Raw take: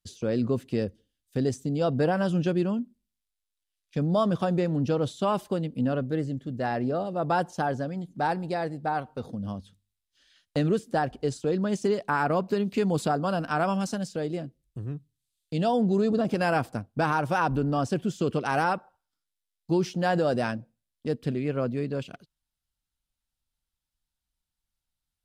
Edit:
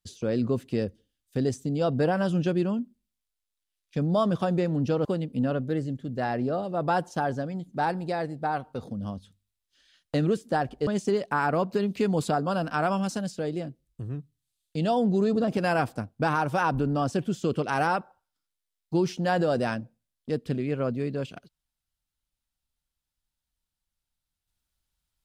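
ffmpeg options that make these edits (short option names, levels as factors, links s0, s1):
-filter_complex "[0:a]asplit=3[s0][s1][s2];[s0]atrim=end=5.052[s3];[s1]atrim=start=5.468:end=11.292[s4];[s2]atrim=start=11.638[s5];[s3][s4]acrossfade=d=0.004:c1=hsin:c2=hsin[s6];[s6][s5]acrossfade=d=0.004:c1=hsin:c2=hsin"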